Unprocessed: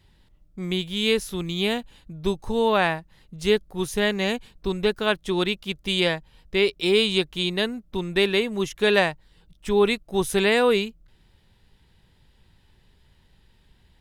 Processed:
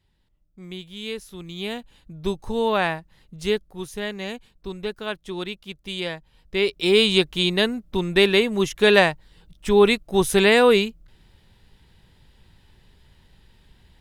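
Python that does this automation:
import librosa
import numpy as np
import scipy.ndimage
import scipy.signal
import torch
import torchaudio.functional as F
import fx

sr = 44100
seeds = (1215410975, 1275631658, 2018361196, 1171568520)

y = fx.gain(x, sr, db=fx.line((1.26, -10.0), (2.18, -1.0), (3.4, -1.0), (3.89, -7.0), (6.05, -7.0), (7.08, 4.0)))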